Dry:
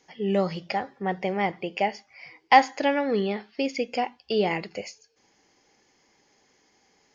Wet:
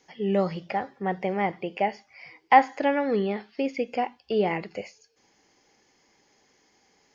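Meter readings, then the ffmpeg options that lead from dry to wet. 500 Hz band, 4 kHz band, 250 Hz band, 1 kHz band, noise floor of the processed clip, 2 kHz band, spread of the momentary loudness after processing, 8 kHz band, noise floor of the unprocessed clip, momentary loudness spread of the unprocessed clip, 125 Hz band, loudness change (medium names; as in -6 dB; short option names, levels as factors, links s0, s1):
0.0 dB, -7.0 dB, 0.0 dB, 0.0 dB, -66 dBFS, -2.0 dB, 12 LU, no reading, -66 dBFS, 12 LU, 0.0 dB, -0.5 dB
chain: -filter_complex "[0:a]acrossover=split=2600[s0][s1];[s1]acompressor=threshold=0.00316:ratio=4:attack=1:release=60[s2];[s0][s2]amix=inputs=2:normalize=0"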